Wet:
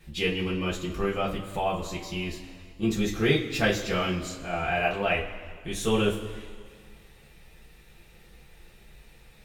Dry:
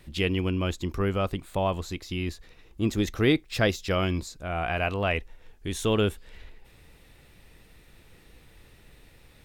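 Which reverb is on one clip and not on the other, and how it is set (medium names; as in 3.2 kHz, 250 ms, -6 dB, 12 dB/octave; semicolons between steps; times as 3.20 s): two-slope reverb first 0.23 s, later 2 s, from -18 dB, DRR -7 dB; trim -6.5 dB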